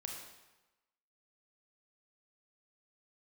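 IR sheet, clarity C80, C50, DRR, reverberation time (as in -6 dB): 5.0 dB, 2.5 dB, 0.5 dB, 1.1 s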